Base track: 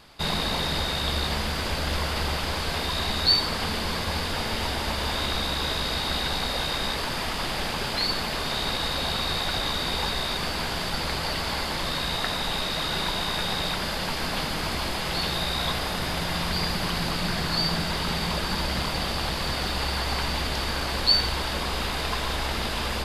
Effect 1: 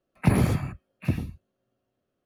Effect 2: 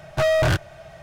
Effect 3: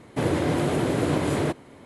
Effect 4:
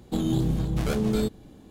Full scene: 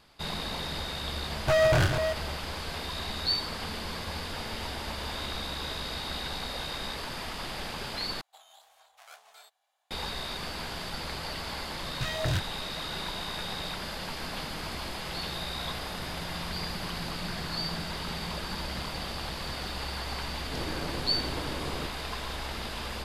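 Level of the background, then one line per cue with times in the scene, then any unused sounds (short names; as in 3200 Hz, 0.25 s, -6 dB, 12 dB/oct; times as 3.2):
base track -8 dB
1.3 add 2 -3.5 dB + reverse delay 0.276 s, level -6.5 dB
8.21 replace with 4 -14.5 dB + elliptic high-pass 690 Hz, stop band 50 dB
11.83 add 2 -8 dB + phaser stages 2, 3 Hz, lowest notch 550–1400 Hz
20.35 add 3 -10.5 dB + half-wave gain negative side -12 dB
not used: 1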